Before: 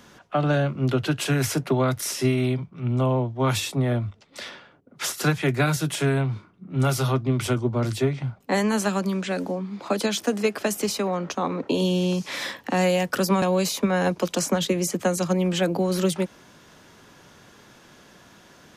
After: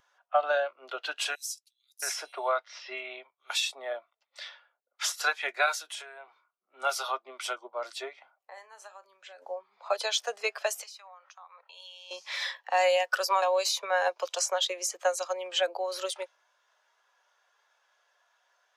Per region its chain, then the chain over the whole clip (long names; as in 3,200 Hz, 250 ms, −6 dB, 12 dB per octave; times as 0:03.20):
0:01.35–0:03.50: low-shelf EQ 97 Hz −11.5 dB + multiband delay without the direct sound highs, lows 670 ms, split 4,400 Hz
0:05.78–0:06.28: high-pass filter 240 Hz 24 dB per octave + downward compressor 4 to 1, threshold −30 dBFS
0:08.39–0:09.42: downward compressor 4 to 1, threshold −35 dBFS + double-tracking delay 41 ms −12 dB
0:10.83–0:12.11: high-pass filter 920 Hz + downward compressor 5 to 1, threshold −38 dBFS
whole clip: high-pass filter 610 Hz 24 dB per octave; dynamic equaliser 4,500 Hz, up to +4 dB, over −44 dBFS, Q 0.83; every bin expanded away from the loudest bin 1.5 to 1; level −2 dB